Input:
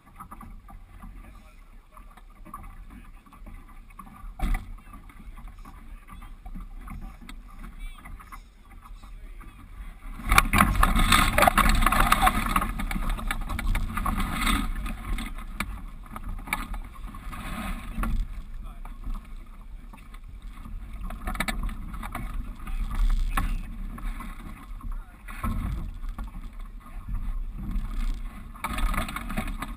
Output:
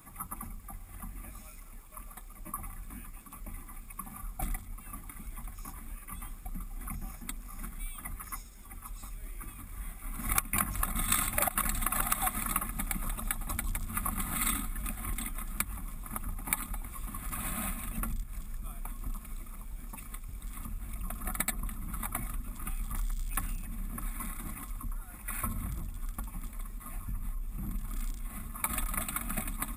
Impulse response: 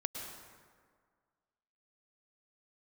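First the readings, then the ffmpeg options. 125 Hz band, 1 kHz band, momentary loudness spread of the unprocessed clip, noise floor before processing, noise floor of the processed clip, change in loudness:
−7.5 dB, −11.5 dB, 25 LU, −49 dBFS, −48 dBFS, −8.5 dB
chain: -af "acompressor=threshold=-34dB:ratio=3,aexciter=amount=6.2:drive=2.5:freq=5800"

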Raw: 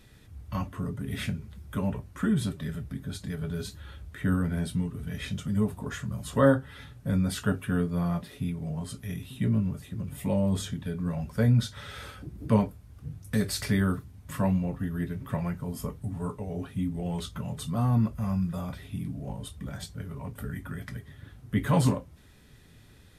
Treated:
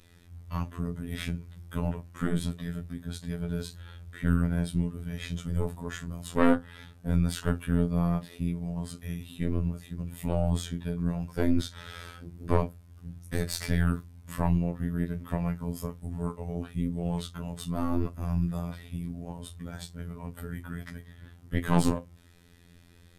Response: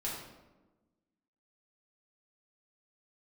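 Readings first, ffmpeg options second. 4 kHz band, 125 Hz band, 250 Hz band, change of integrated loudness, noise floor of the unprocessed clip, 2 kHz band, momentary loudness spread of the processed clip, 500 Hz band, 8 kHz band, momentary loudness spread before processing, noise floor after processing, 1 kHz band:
−1.5 dB, −1.5 dB, −1.5 dB, −1.5 dB, −54 dBFS, −1.5 dB, 14 LU, −2.0 dB, −1.5 dB, 13 LU, −55 dBFS, −0.5 dB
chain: -af "aeval=exprs='0.376*(cos(1*acos(clip(val(0)/0.376,-1,1)))-cos(1*PI/2))+0.0841*(cos(4*acos(clip(val(0)/0.376,-1,1)))-cos(4*PI/2))':channel_layout=same,afftfilt=real='hypot(re,im)*cos(PI*b)':imag='0':win_size=2048:overlap=0.75,volume=1.5dB"

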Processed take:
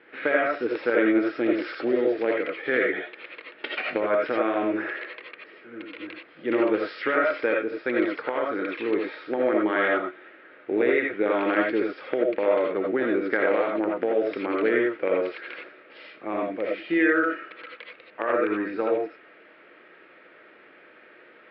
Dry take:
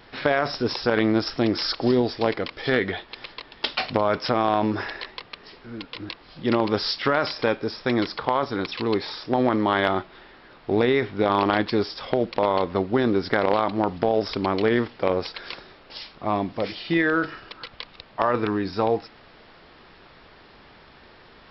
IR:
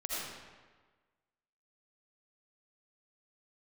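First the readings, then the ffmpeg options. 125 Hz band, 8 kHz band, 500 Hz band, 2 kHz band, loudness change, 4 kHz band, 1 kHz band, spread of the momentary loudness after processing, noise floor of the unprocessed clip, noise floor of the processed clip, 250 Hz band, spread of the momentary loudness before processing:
below −15 dB, can't be measured, 0.0 dB, +1.5 dB, −1.0 dB, −12.0 dB, −5.5 dB, 16 LU, −51 dBFS, −52 dBFS, −1.5 dB, 16 LU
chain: -filter_complex "[0:a]highpass=320,equalizer=frequency=320:width_type=q:width=4:gain=7,equalizer=frequency=490:width_type=q:width=4:gain=5,equalizer=frequency=710:width_type=q:width=4:gain=-7,equalizer=frequency=1000:width_type=q:width=4:gain=-9,equalizer=frequency=1600:width_type=q:width=4:gain=5,equalizer=frequency=2300:width_type=q:width=4:gain=5,lowpass=frequency=2600:width=0.5412,lowpass=frequency=2600:width=1.3066[link_01];[1:a]atrim=start_sample=2205,atrim=end_sample=4410[link_02];[link_01][link_02]afir=irnorm=-1:irlink=0,volume=-1dB"

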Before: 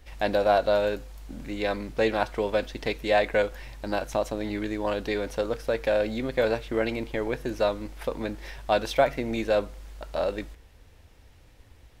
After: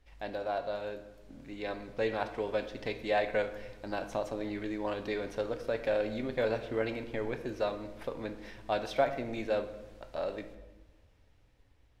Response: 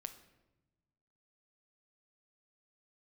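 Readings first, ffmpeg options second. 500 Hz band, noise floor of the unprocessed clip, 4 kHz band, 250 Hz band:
−7.5 dB, −54 dBFS, −9.0 dB, −7.0 dB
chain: -filter_complex "[0:a]highshelf=frequency=8100:gain=-10,dynaudnorm=framelen=370:gausssize=9:maxgain=7dB[link_01];[1:a]atrim=start_sample=2205,asetrate=40572,aresample=44100[link_02];[link_01][link_02]afir=irnorm=-1:irlink=0,volume=-9dB"

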